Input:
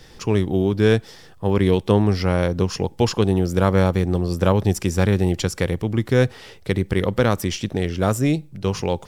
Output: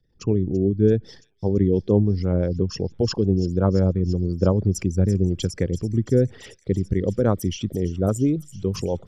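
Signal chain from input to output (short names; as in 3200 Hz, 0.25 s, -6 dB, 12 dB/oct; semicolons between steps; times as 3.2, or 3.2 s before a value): formant sharpening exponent 2; gate -41 dBFS, range -19 dB; rotary speaker horn 6 Hz; on a send: thin delay 0.336 s, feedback 82%, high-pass 5000 Hz, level -11 dB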